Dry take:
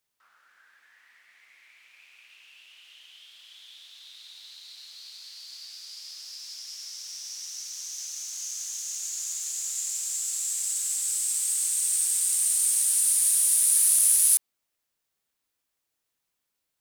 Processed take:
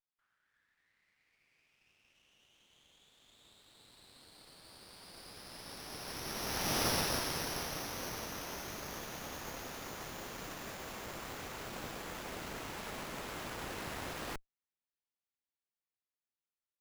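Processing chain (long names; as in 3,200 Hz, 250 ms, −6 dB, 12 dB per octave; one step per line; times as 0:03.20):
source passing by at 0:06.84, 22 m/s, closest 5.8 metres
windowed peak hold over 5 samples
level +10.5 dB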